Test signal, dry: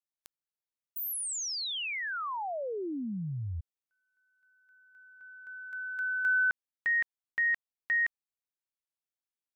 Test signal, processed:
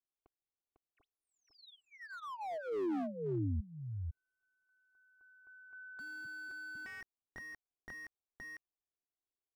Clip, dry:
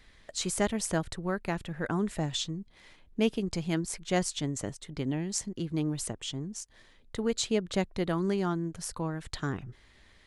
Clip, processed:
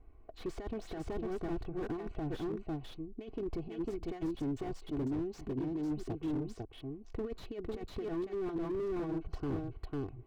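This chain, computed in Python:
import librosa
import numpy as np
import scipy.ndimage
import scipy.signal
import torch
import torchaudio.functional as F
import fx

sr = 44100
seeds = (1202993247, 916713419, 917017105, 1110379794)

y = fx.wiener(x, sr, points=25)
y = scipy.signal.sosfilt(scipy.signal.butter(2, 3800.0, 'lowpass', fs=sr, output='sos'), y)
y = fx.env_lowpass(y, sr, base_hz=1800.0, full_db=-27.5)
y = y + 10.0 ** (-4.0 / 20.0) * np.pad(y, (int(500 * sr / 1000.0), 0))[:len(y)]
y = fx.over_compress(y, sr, threshold_db=-31.0, ratio=-0.5)
y = y + 0.79 * np.pad(y, (int(2.7 * sr / 1000.0), 0))[:len(y)]
y = fx.slew_limit(y, sr, full_power_hz=12.0)
y = F.gain(torch.from_numpy(y), -3.5).numpy()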